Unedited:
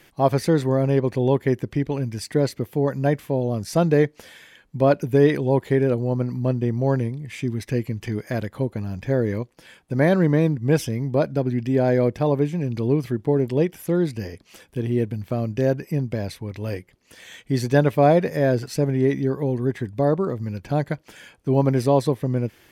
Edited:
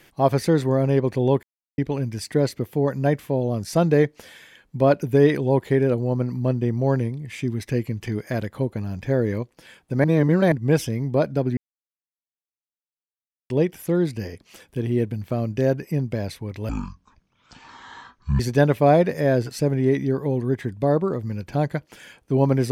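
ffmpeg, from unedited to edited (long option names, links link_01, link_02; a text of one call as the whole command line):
ffmpeg -i in.wav -filter_complex "[0:a]asplit=9[link_01][link_02][link_03][link_04][link_05][link_06][link_07][link_08][link_09];[link_01]atrim=end=1.43,asetpts=PTS-STARTPTS,afade=type=out:start_time=1.426:duration=0.004:curve=hsin[link_10];[link_02]atrim=start=1.43:end=1.78,asetpts=PTS-STARTPTS,volume=0[link_11];[link_03]atrim=start=1.78:end=10.042,asetpts=PTS-STARTPTS,afade=type=in:duration=0.004:curve=hsin[link_12];[link_04]atrim=start=10.038:end=10.522,asetpts=PTS-STARTPTS,areverse[link_13];[link_05]atrim=start=10.518:end=11.57,asetpts=PTS-STARTPTS,afade=type=out:start_time=1.048:duration=0.004:curve=hsin[link_14];[link_06]atrim=start=11.57:end=13.5,asetpts=PTS-STARTPTS,volume=0[link_15];[link_07]atrim=start=13.5:end=16.694,asetpts=PTS-STARTPTS,afade=type=in:duration=0.004:curve=hsin[link_16];[link_08]atrim=start=16.69:end=17.56,asetpts=PTS-STARTPTS,asetrate=22491,aresample=44100,atrim=end_sample=75229,asetpts=PTS-STARTPTS[link_17];[link_09]atrim=start=17.556[link_18];[link_10][link_11][link_12]concat=n=3:v=0:a=1[link_19];[link_19][link_13]acrossfade=duration=0.004:curve1=hsin:curve2=hsin[link_20];[link_14][link_15][link_16]concat=n=3:v=0:a=1[link_21];[link_20][link_21]acrossfade=duration=0.004:curve1=hsin:curve2=hsin[link_22];[link_22][link_17]acrossfade=duration=0.004:curve1=hsin:curve2=hsin[link_23];[link_23][link_18]acrossfade=duration=0.004:curve1=hsin:curve2=hsin" out.wav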